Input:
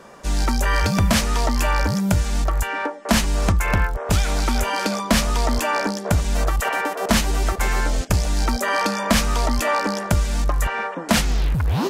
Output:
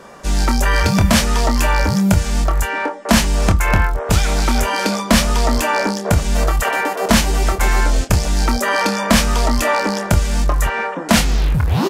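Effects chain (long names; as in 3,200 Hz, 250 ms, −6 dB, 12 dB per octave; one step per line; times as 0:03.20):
double-tracking delay 26 ms −8 dB
level +4 dB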